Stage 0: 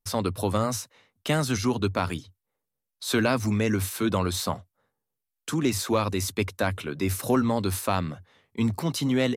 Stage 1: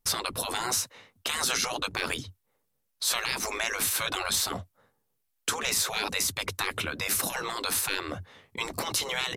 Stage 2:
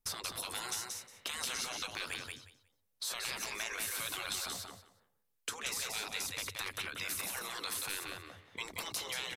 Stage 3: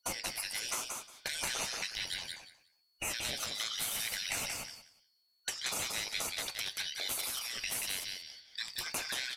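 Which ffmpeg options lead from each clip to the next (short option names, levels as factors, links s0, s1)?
-af "afftfilt=real='re*lt(hypot(re,im),0.0891)':imag='im*lt(hypot(re,im),0.0891)':win_size=1024:overlap=0.75,alimiter=limit=0.0794:level=0:latency=1:release=138,volume=2.37"
-filter_complex "[0:a]acrossover=split=650|1500[s0][s1][s2];[s0]acompressor=threshold=0.00501:ratio=4[s3];[s1]acompressor=threshold=0.00562:ratio=4[s4];[s2]acompressor=threshold=0.0316:ratio=4[s5];[s3][s4][s5]amix=inputs=3:normalize=0,asplit=2[s6][s7];[s7]aecho=0:1:180|360|540:0.631|0.107|0.0182[s8];[s6][s8]amix=inputs=2:normalize=0,volume=0.473"
-af "afftfilt=real='real(if(lt(b,272),68*(eq(floor(b/68),0)*3+eq(floor(b/68),1)*2+eq(floor(b/68),2)*1+eq(floor(b/68),3)*0)+mod(b,68),b),0)':imag='imag(if(lt(b,272),68*(eq(floor(b/68),0)*3+eq(floor(b/68),1)*2+eq(floor(b/68),2)*1+eq(floor(b/68),3)*0)+mod(b,68),b),0)':win_size=2048:overlap=0.75,flanger=delay=8.5:depth=8.8:regen=76:speed=0.98:shape=triangular,volume=2.11"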